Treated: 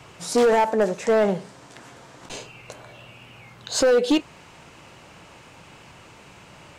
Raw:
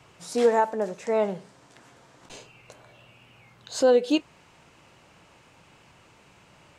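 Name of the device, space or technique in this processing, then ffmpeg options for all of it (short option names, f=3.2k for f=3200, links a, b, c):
limiter into clipper: -af "alimiter=limit=-16.5dB:level=0:latency=1:release=43,asoftclip=type=hard:threshold=-22.5dB,volume=8.5dB"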